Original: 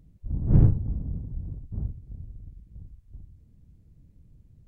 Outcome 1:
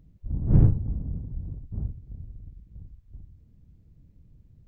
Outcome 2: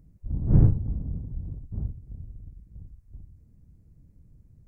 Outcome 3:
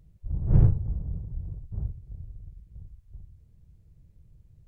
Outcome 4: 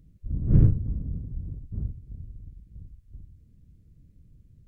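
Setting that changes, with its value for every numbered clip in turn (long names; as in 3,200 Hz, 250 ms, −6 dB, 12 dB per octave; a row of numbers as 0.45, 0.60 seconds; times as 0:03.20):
parametric band, centre frequency: 10,000, 3,300, 250, 820 Hertz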